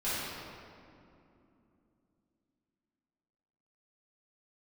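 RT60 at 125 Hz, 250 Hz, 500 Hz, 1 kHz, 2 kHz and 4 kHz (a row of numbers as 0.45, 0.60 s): 3.7, 4.2, 3.0, 2.5, 2.0, 1.4 s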